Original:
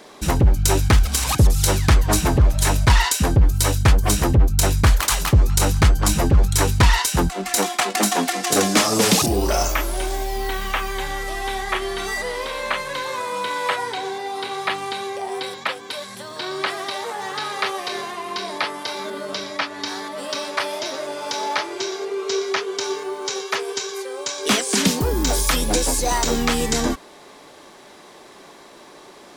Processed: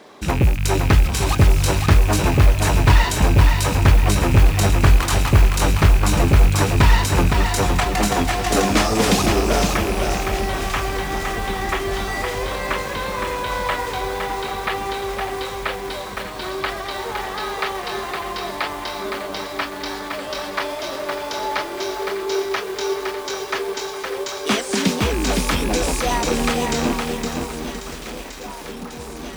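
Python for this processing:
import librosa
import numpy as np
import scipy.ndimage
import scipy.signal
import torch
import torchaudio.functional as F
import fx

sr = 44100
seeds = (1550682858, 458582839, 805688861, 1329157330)

p1 = fx.rattle_buzz(x, sr, strikes_db=-23.0, level_db=-17.0)
p2 = scipy.signal.sosfilt(scipy.signal.butter(2, 43.0, 'highpass', fs=sr, output='sos'), p1)
p3 = fx.high_shelf(p2, sr, hz=5200.0, db=-9.5)
p4 = fx.mod_noise(p3, sr, seeds[0], snr_db=27)
p5 = p4 + fx.echo_alternate(p4, sr, ms=792, hz=1400.0, feedback_pct=83, wet_db=-11.0, dry=0)
y = fx.echo_crushed(p5, sr, ms=513, feedback_pct=35, bits=6, wet_db=-4.0)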